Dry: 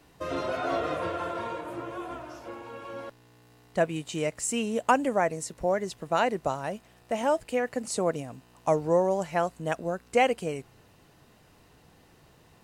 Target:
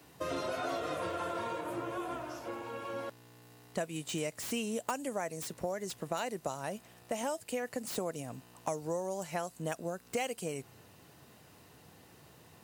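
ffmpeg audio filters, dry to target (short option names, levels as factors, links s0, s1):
-filter_complex "[0:a]highpass=f=75:w=0.5412,highpass=f=75:w=1.3066,highshelf=f=9200:g=8.5,acrossover=split=4000[s0][s1];[s0]acompressor=threshold=0.0224:ratio=6[s2];[s1]aeval=exprs='0.0158*(abs(mod(val(0)/0.0158+3,4)-2)-1)':c=same[s3];[s2][s3]amix=inputs=2:normalize=0"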